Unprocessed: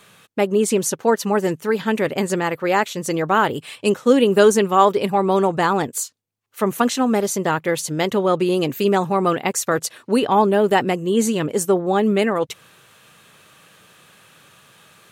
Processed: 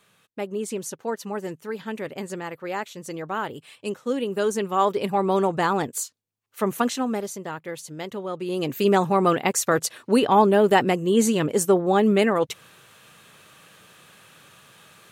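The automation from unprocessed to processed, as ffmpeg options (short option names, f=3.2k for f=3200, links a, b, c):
-af "volume=8dB,afade=t=in:st=4.4:d=0.8:silence=0.421697,afade=t=out:st=6.75:d=0.65:silence=0.354813,afade=t=in:st=8.4:d=0.52:silence=0.251189"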